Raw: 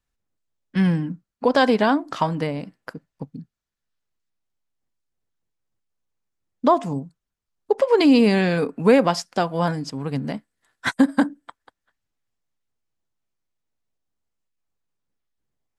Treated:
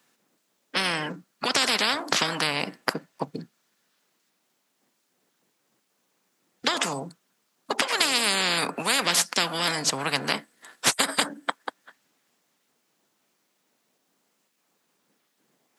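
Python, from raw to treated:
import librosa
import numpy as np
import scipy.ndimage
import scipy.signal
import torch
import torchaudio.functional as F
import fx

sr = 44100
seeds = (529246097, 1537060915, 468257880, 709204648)

y = scipy.signal.sosfilt(scipy.signal.butter(4, 190.0, 'highpass', fs=sr, output='sos'), x)
y = fx.spectral_comp(y, sr, ratio=10.0)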